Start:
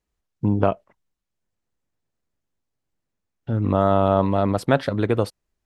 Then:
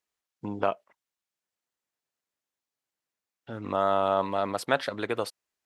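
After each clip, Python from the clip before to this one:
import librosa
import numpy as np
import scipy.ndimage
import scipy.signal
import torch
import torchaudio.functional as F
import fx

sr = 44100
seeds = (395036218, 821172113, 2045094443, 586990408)

y = fx.highpass(x, sr, hz=1100.0, slope=6)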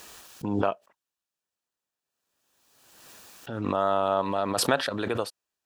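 y = fx.notch(x, sr, hz=2100.0, q=6.3)
y = fx.pre_swell(y, sr, db_per_s=37.0)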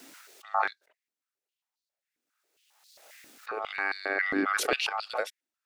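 y = x * np.sin(2.0 * np.pi * 980.0 * np.arange(len(x)) / sr)
y = fx.filter_held_highpass(y, sr, hz=7.4, low_hz=270.0, high_hz=4300.0)
y = y * librosa.db_to_amplitude(-2.5)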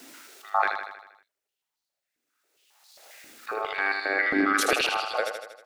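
y = fx.echo_feedback(x, sr, ms=79, feedback_pct=56, wet_db=-6.0)
y = y * librosa.db_to_amplitude(3.0)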